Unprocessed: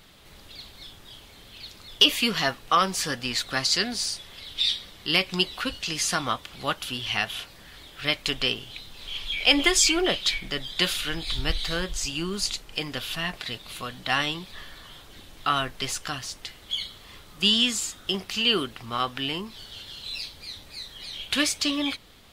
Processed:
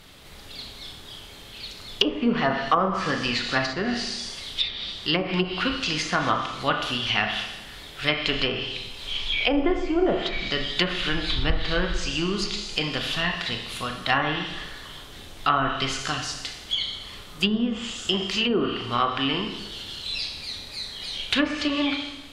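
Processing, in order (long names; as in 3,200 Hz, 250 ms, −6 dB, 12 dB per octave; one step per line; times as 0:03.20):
four-comb reverb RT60 1 s, combs from 26 ms, DRR 3.5 dB
treble cut that deepens with the level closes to 780 Hz, closed at −17 dBFS
level +3.5 dB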